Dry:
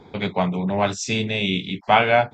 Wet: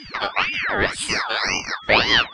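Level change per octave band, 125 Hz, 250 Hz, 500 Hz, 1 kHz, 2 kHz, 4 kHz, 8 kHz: −9.0, −7.5, −4.5, −3.0, +5.5, +6.5, +3.5 decibels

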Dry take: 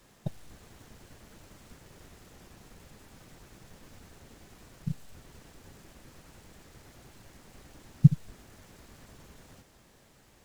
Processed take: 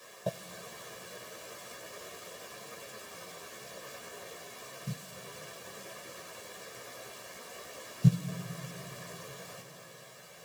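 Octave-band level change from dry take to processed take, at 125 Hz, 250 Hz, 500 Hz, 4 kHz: −4.0, −3.0, +11.5, +10.5 decibels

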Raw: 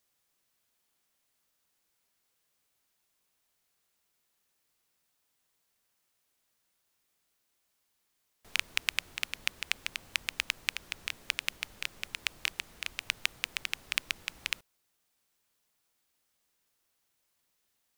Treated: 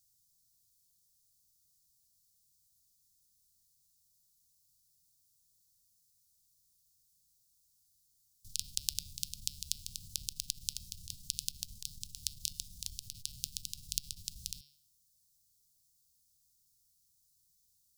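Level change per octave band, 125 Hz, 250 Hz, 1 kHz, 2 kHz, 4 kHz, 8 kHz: +6.0 dB, −4.5 dB, below −30 dB, −27.0 dB, −5.5 dB, +4.0 dB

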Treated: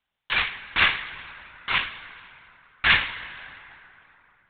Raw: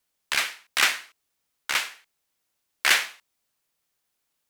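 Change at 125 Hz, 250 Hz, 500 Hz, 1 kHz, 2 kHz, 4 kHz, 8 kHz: can't be measured, +7.0 dB, 0.0 dB, +2.5 dB, +2.5 dB, +0.5 dB, below −40 dB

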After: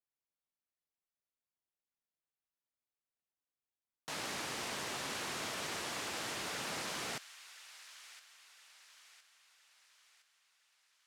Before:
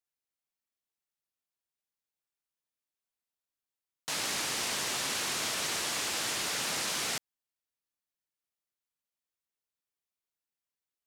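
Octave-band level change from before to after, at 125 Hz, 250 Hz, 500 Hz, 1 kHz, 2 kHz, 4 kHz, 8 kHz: −3.0, −3.0, −3.5, −4.0, −6.0, −9.0, −10.5 decibels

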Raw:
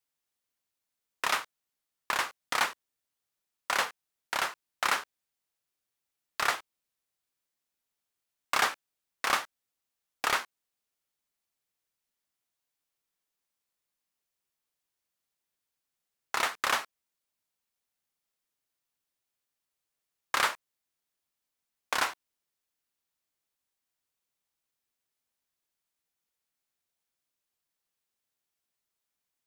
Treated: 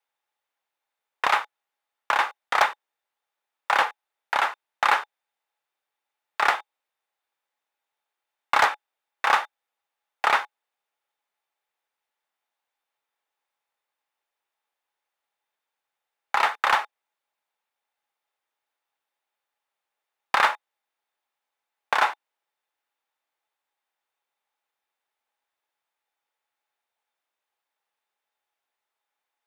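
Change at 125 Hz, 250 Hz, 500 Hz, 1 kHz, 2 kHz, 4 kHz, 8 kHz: can't be measured, +1.0 dB, +7.0 dB, +9.5 dB, +6.5 dB, +2.0 dB, −4.5 dB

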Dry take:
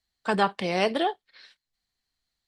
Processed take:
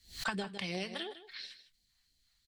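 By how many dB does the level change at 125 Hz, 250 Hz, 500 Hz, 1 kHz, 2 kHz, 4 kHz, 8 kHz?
−8.5, −11.5, −16.0, −17.5, −8.0, −6.0, −2.0 decibels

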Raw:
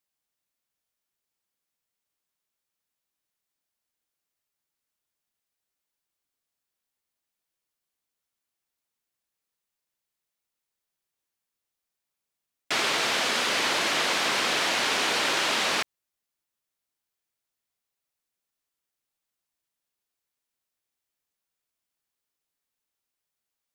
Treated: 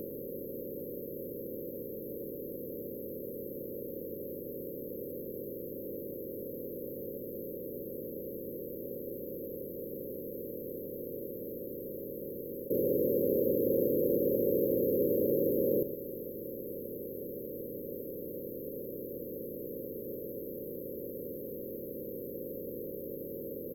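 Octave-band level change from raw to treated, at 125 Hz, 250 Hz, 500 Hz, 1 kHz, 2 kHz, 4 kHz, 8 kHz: +9.0 dB, +8.0 dB, +7.5 dB, below −40 dB, below −40 dB, below −40 dB, below −40 dB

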